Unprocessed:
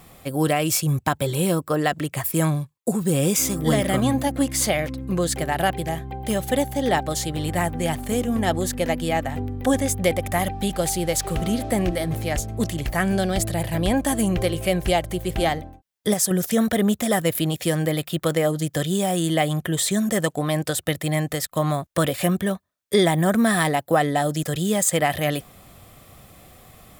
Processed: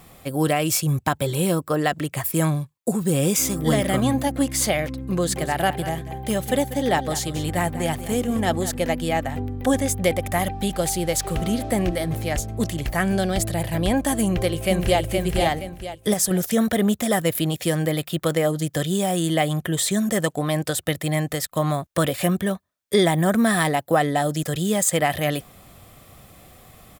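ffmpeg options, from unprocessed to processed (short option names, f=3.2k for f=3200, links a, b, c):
-filter_complex "[0:a]asettb=1/sr,asplit=3[a][b][c];[a]atrim=end=4.894[d];[b]atrim=start=4.89:end=8.77,asetpts=PTS-STARTPTS,afade=t=in:d=0.004:c=qsin,afade=t=out:st=3.876:d=0.004:c=qsin,aecho=1:1:192:0.211,atrim=end_sample=171108[e];[c]atrim=start=8.766[f];[d][e]acrossfade=d=0.004:c1=hsin:c2=qsin[g];[g][f]acrossfade=d=0.004:c1=qsin:c2=hsin,asplit=2[h][i];[i]afade=t=in:st=14.23:d=0.01,afade=t=out:st=15.01:d=0.01,aecho=0:1:470|940|1410|1880:0.630957|0.220835|0.0772923|0.0270523[j];[h][j]amix=inputs=2:normalize=0"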